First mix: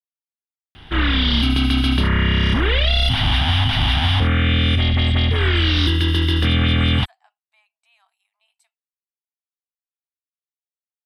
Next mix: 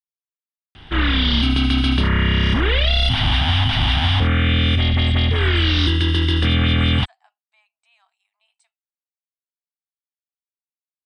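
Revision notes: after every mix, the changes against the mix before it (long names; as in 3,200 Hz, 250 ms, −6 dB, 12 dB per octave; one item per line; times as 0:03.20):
master: add Butterworth low-pass 9,400 Hz 72 dB per octave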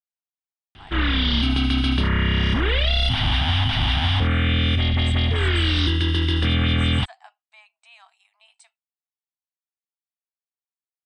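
speech +10.5 dB
background −3.0 dB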